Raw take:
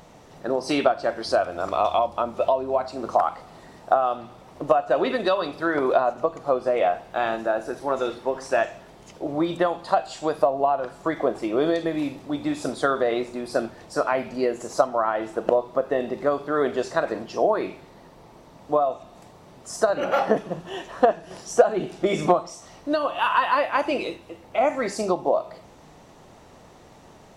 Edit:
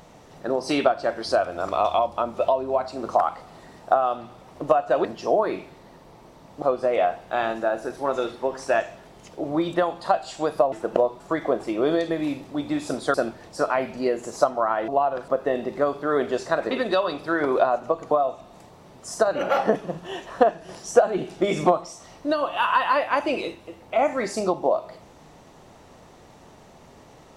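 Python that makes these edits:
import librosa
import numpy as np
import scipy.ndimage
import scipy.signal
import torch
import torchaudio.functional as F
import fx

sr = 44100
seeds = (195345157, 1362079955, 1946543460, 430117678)

y = fx.edit(x, sr, fx.swap(start_s=5.05, length_s=1.4, other_s=17.16, other_length_s=1.57),
    fx.swap(start_s=10.55, length_s=0.4, other_s=15.25, other_length_s=0.48),
    fx.cut(start_s=12.89, length_s=0.62), tone=tone)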